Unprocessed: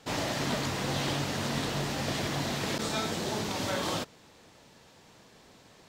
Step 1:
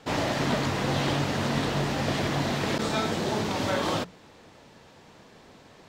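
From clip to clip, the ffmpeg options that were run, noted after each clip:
ffmpeg -i in.wav -af "highshelf=frequency=4300:gain=-9.5,bandreject=frequency=60:width_type=h:width=6,bandreject=frequency=120:width_type=h:width=6,bandreject=frequency=180:width_type=h:width=6,volume=5.5dB" out.wav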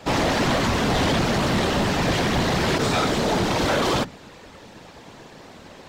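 ffmpeg -i in.wav -af "afftfilt=real='hypot(re,im)*cos(2*PI*random(0))':imag='hypot(re,im)*sin(2*PI*random(1))':win_size=512:overlap=0.75,aeval=exprs='0.112*(cos(1*acos(clip(val(0)/0.112,-1,1)))-cos(1*PI/2))+0.0398*(cos(5*acos(clip(val(0)/0.112,-1,1)))-cos(5*PI/2))':channel_layout=same,volume=5.5dB" out.wav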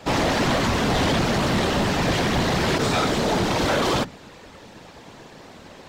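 ffmpeg -i in.wav -af anull out.wav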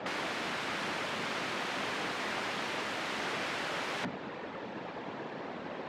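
ffmpeg -i in.wav -af "aeval=exprs='(mod(25.1*val(0)+1,2)-1)/25.1':channel_layout=same,highpass=190,lowpass=2400,volume=4dB" out.wav

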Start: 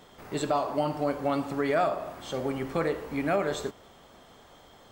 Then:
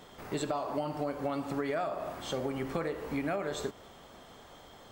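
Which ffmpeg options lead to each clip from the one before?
ffmpeg -i in.wav -af "acompressor=threshold=-31dB:ratio=6,volume=1dB" out.wav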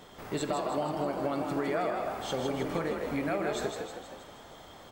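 ffmpeg -i in.wav -filter_complex "[0:a]asplit=8[link_01][link_02][link_03][link_04][link_05][link_06][link_07][link_08];[link_02]adelay=158,afreqshift=41,volume=-5dB[link_09];[link_03]adelay=316,afreqshift=82,volume=-10dB[link_10];[link_04]adelay=474,afreqshift=123,volume=-15.1dB[link_11];[link_05]adelay=632,afreqshift=164,volume=-20.1dB[link_12];[link_06]adelay=790,afreqshift=205,volume=-25.1dB[link_13];[link_07]adelay=948,afreqshift=246,volume=-30.2dB[link_14];[link_08]adelay=1106,afreqshift=287,volume=-35.2dB[link_15];[link_01][link_09][link_10][link_11][link_12][link_13][link_14][link_15]amix=inputs=8:normalize=0,volume=1dB" out.wav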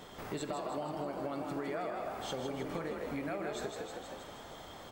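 ffmpeg -i in.wav -af "acompressor=threshold=-42dB:ratio=2,volume=1dB" out.wav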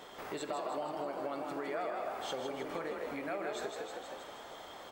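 ffmpeg -i in.wav -af "bass=frequency=250:gain=-13,treble=frequency=4000:gain=-3,volume=1.5dB" out.wav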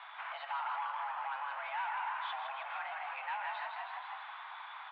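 ffmpeg -i in.wav -af "volume=35dB,asoftclip=hard,volume=-35dB,highpass=frequency=580:width_type=q:width=0.5412,highpass=frequency=580:width_type=q:width=1.307,lowpass=frequency=3000:width_type=q:width=0.5176,lowpass=frequency=3000:width_type=q:width=0.7071,lowpass=frequency=3000:width_type=q:width=1.932,afreqshift=250,volume=3.5dB" out.wav

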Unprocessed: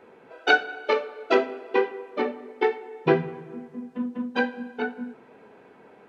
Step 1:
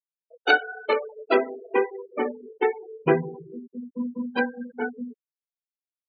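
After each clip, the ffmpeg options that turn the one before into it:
ffmpeg -i in.wav -af "afftfilt=real='re*gte(hypot(re,im),0.0447)':imag='im*gte(hypot(re,im),0.0447)':win_size=1024:overlap=0.75" out.wav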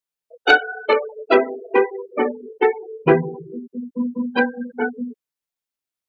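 ffmpeg -i in.wav -af "acontrast=37,volume=1dB" out.wav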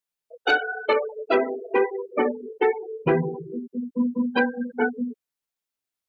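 ffmpeg -i in.wav -af "alimiter=limit=-11dB:level=0:latency=1:release=68" out.wav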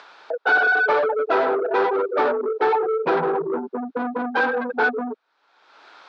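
ffmpeg -i in.wav -filter_complex "[0:a]asplit=2[link_01][link_02];[link_02]highpass=frequency=720:poles=1,volume=32dB,asoftclip=type=tanh:threshold=-10.5dB[link_03];[link_01][link_03]amix=inputs=2:normalize=0,lowpass=frequency=2000:poles=1,volume=-6dB,acompressor=mode=upward:threshold=-20dB:ratio=2.5,highpass=frequency=210:width=0.5412,highpass=frequency=210:width=1.3066,equalizer=frequency=230:width_type=q:width=4:gain=-9,equalizer=frequency=880:width_type=q:width=4:gain=5,equalizer=frequency=1400:width_type=q:width=4:gain=7,equalizer=frequency=2000:width_type=q:width=4:gain=-6,equalizer=frequency=2900:width_type=q:width=4:gain=-7,lowpass=frequency=4100:width=0.5412,lowpass=frequency=4100:width=1.3066,volume=-3dB" out.wav

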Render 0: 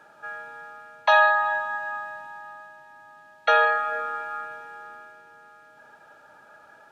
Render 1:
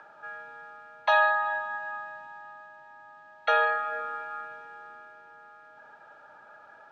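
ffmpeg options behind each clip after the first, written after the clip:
ffmpeg -i in.wav -filter_complex "[0:a]lowpass=5400,acrossover=split=240|590|1700[link_01][link_02][link_03][link_04];[link_03]acompressor=mode=upward:threshold=-41dB:ratio=2.5[link_05];[link_01][link_02][link_05][link_04]amix=inputs=4:normalize=0,volume=-4.5dB" out.wav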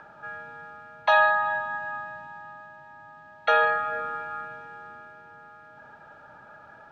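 ffmpeg -i in.wav -af "bass=frequency=250:gain=14,treble=frequency=4000:gain=-1,volume=2.5dB" out.wav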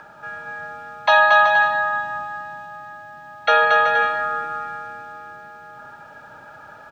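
ffmpeg -i in.wav -af "crystalizer=i=2:c=0,aecho=1:1:230|379.5|476.7|539.8|580.9:0.631|0.398|0.251|0.158|0.1,volume=4dB" out.wav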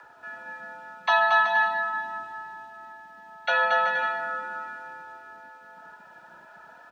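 ffmpeg -i in.wav -filter_complex "[0:a]acrossover=split=270|730|1500[link_01][link_02][link_03][link_04];[link_01]aeval=exprs='val(0)*gte(abs(val(0)),0.00168)':channel_layout=same[link_05];[link_05][link_02][link_03][link_04]amix=inputs=4:normalize=0,afreqshift=51,flanger=delay=2.1:depth=3.6:regen=-47:speed=0.4:shape=triangular,volume=-3dB" out.wav

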